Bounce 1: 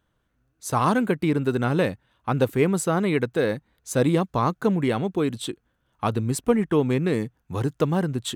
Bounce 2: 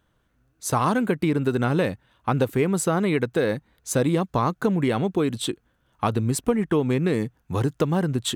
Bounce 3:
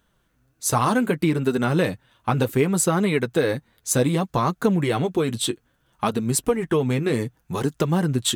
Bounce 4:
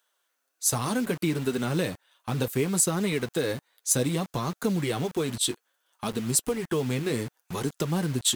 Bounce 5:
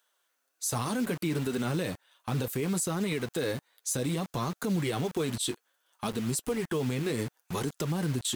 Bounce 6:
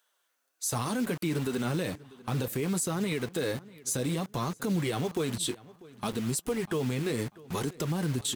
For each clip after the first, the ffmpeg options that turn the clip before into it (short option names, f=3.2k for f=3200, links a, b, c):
-af "acompressor=threshold=-23dB:ratio=3,volume=4dB"
-af "highshelf=f=3.8k:g=6.5,flanger=delay=4.2:depth=5.2:regen=-34:speed=0.65:shape=triangular,volume=4.5dB"
-filter_complex "[0:a]acrossover=split=470|3600[a][b][c];[a]acrusher=bits=5:mix=0:aa=0.000001[d];[b]alimiter=limit=-19dB:level=0:latency=1[e];[c]acontrast=76[f];[d][e][f]amix=inputs=3:normalize=0,volume=-6dB"
-af "alimiter=limit=-21.5dB:level=0:latency=1:release=36"
-filter_complex "[0:a]asplit=2[a][b];[b]adelay=644,lowpass=f=4.1k:p=1,volume=-20.5dB,asplit=2[c][d];[d]adelay=644,lowpass=f=4.1k:p=1,volume=0.34,asplit=2[e][f];[f]adelay=644,lowpass=f=4.1k:p=1,volume=0.34[g];[a][c][e][g]amix=inputs=4:normalize=0"